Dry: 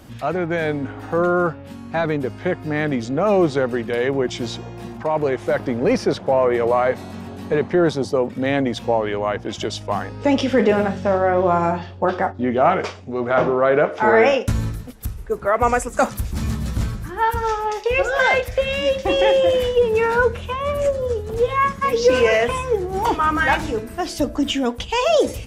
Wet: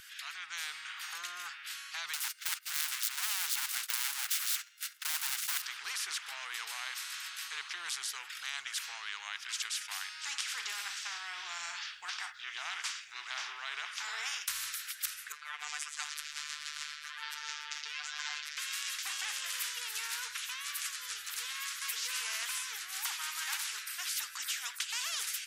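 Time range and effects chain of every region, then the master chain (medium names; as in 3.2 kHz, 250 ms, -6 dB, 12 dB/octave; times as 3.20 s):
2.13–5.62 s: comb filter that takes the minimum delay 1.4 ms + RIAA curve recording + gate -37 dBFS, range -25 dB
15.32–18.57 s: robot voice 149 Hz + low-pass 4.3 kHz
whole clip: elliptic high-pass 1.5 kHz, stop band 60 dB; level rider gain up to 9 dB; spectrum-flattening compressor 4:1; trim -8 dB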